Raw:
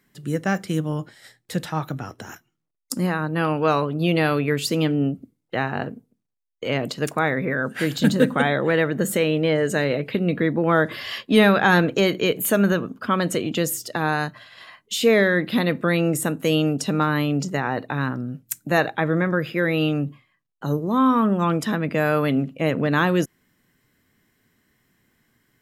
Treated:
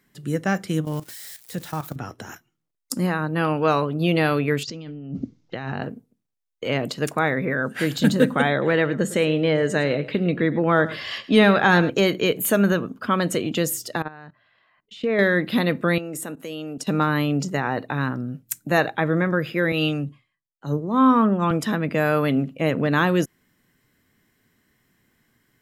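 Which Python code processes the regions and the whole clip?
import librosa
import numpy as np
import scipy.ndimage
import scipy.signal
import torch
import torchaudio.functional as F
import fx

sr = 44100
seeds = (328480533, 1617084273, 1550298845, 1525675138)

y = fx.chain(x, sr, fx.crossing_spikes(level_db=-28.5),
    fx.level_steps(step_db=13), at=(0.85, 1.96))
y = fx.chain(y, sr, fx.bass_treble(bass_db=5, treble_db=7),
    fx.over_compress(threshold_db=-32.0, ratio=-1.0),
    fx.steep_lowpass(hz=6300.0, slope=48), at=(4.63, 5.83))
y = fx.chain(y, sr, fx.lowpass(hz=7700.0, slope=12),
    fx.echo_single(ms=107, db=-16.5), at=(8.51, 11.9))
y = fx.chain(y, sr, fx.lowpass(hz=2500.0, slope=12),
    fx.level_steps(step_db=21), at=(14.02, 15.19))
y = fx.chain(y, sr, fx.highpass(hz=200.0, slope=12),
    fx.level_steps(step_db=16), at=(15.98, 16.87))
y = fx.chain(y, sr, fx.lowpass(hz=11000.0, slope=24),
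    fx.band_widen(depth_pct=70), at=(19.72, 21.51))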